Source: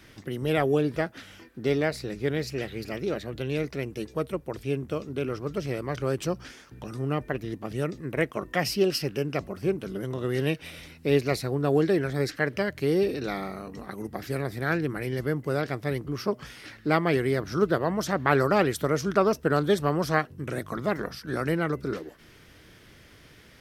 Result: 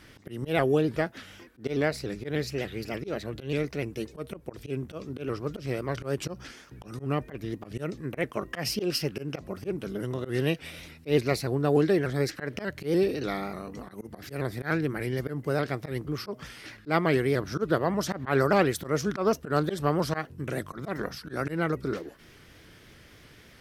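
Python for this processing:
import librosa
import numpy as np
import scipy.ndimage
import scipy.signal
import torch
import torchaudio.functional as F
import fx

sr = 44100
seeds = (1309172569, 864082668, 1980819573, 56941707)

y = fx.auto_swell(x, sr, attack_ms=112.0)
y = fx.vibrato_shape(y, sr, shape='saw_up', rate_hz=3.4, depth_cents=100.0)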